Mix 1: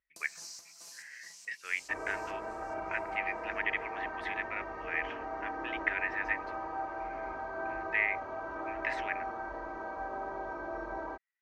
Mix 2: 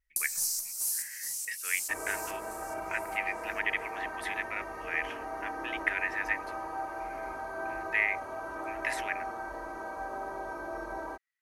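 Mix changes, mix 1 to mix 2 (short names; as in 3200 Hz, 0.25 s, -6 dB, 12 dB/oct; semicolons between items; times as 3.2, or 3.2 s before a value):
first sound: remove HPF 270 Hz 6 dB/oct; master: remove air absorption 180 m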